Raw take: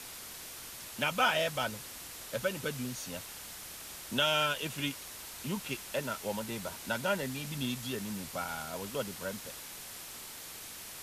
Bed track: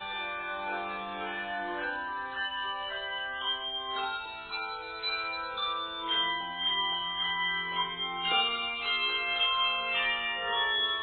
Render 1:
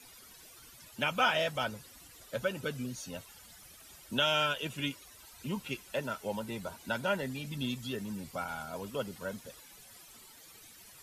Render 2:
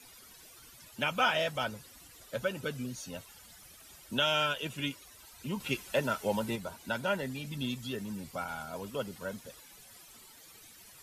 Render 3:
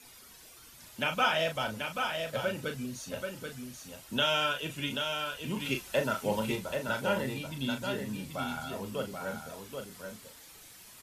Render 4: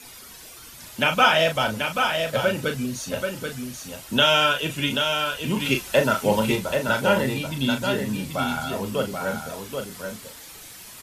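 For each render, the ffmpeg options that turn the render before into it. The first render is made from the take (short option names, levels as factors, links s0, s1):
-af "afftdn=nr=14:nf=-46"
-filter_complex "[0:a]asettb=1/sr,asplit=3[s0][s1][s2];[s0]atrim=end=5.604[s3];[s1]atrim=start=5.6:end=6.56,asetpts=PTS-STARTPTS,afade=t=in:d=0.004:c=qsin,afade=t=out:st=0.956:d=0.004:c=qsin,acontrast=28[s4];[s2]atrim=start=6.556[s5];[s3][s4]acrossfade=d=0.004:c1=hsin:c2=qsin[s6];[s6][s5]acrossfade=d=0.004:c1=qsin:c2=hsin"
-filter_complex "[0:a]asplit=2[s0][s1];[s1]adelay=37,volume=0.447[s2];[s0][s2]amix=inputs=2:normalize=0,asplit=2[s3][s4];[s4]aecho=0:1:783:0.531[s5];[s3][s5]amix=inputs=2:normalize=0"
-af "volume=3.16"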